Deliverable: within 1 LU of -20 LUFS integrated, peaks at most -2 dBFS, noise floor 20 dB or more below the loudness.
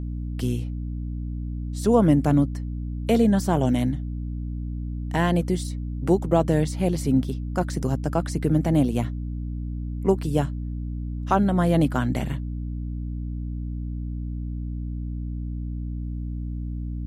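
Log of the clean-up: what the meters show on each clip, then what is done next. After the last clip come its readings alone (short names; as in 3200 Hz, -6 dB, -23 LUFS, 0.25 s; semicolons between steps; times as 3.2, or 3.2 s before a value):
hum 60 Hz; harmonics up to 300 Hz; hum level -27 dBFS; loudness -25.5 LUFS; peak -6.0 dBFS; loudness target -20.0 LUFS
-> de-hum 60 Hz, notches 5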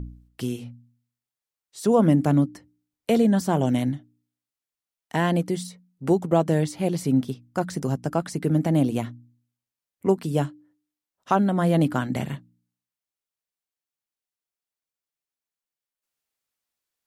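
hum none; loudness -24.0 LUFS; peak -6.5 dBFS; loudness target -20.0 LUFS
-> gain +4 dB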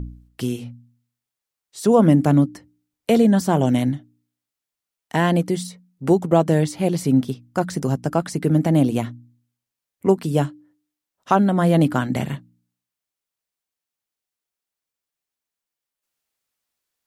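loudness -20.0 LUFS; peak -2.5 dBFS; noise floor -87 dBFS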